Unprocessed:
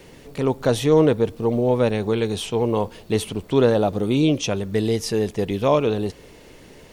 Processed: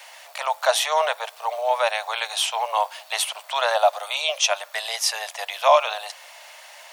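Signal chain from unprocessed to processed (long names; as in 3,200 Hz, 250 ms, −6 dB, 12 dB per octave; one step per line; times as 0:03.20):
Butterworth high-pass 620 Hz 72 dB per octave
level +7.5 dB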